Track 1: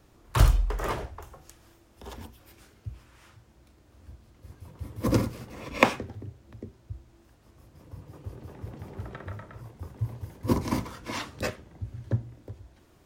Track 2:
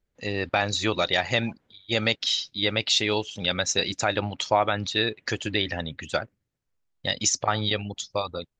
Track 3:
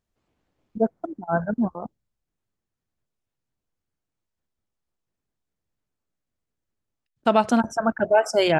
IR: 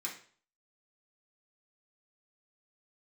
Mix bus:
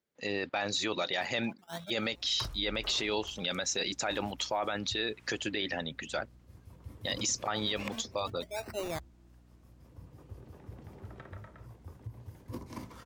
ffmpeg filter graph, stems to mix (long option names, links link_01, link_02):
-filter_complex "[0:a]acompressor=threshold=-31dB:ratio=8,aeval=exprs='val(0)+0.00282*(sin(2*PI*60*n/s)+sin(2*PI*2*60*n/s)/2+sin(2*PI*3*60*n/s)/3+sin(2*PI*4*60*n/s)/4+sin(2*PI*5*60*n/s)/5)':channel_layout=same,adelay=2050,volume=-7.5dB[link_01];[1:a]highpass=190,volume=-2.5dB,asplit=2[link_02][link_03];[2:a]acrusher=samples=26:mix=1:aa=0.000001:lfo=1:lforange=26:lforate=0.45,adelay=400,volume=-17dB[link_04];[link_03]apad=whole_len=396766[link_05];[link_04][link_05]sidechaincompress=threshold=-46dB:ratio=4:attack=34:release=247[link_06];[link_01][link_02][link_06]amix=inputs=3:normalize=0,alimiter=limit=-22dB:level=0:latency=1:release=13"